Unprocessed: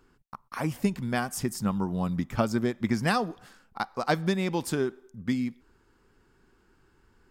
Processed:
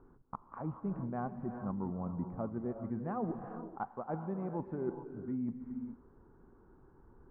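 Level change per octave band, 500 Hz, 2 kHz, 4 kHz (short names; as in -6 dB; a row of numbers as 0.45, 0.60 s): -9.5 dB, -22.0 dB, under -40 dB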